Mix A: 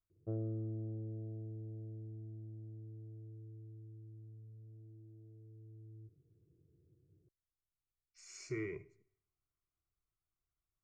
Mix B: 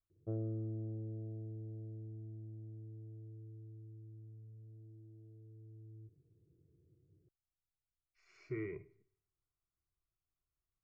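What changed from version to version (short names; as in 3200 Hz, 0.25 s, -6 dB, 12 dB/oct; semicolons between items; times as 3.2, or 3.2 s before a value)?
speech: add air absorption 360 m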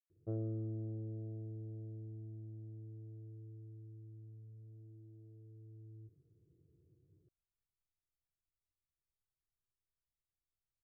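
speech: entry +2.90 s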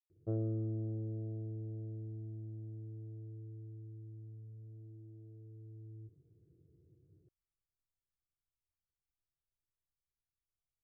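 background +3.5 dB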